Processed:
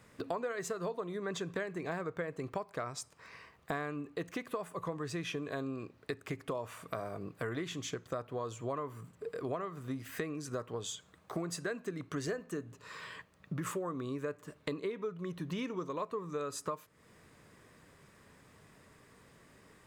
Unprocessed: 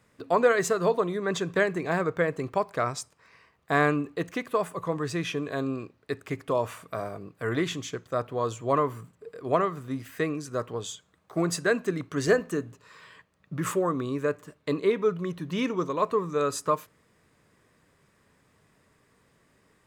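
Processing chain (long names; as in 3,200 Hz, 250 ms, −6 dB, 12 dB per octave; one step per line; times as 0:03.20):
downward compressor 6 to 1, threshold −40 dBFS, peak gain reduction 22 dB
level +4 dB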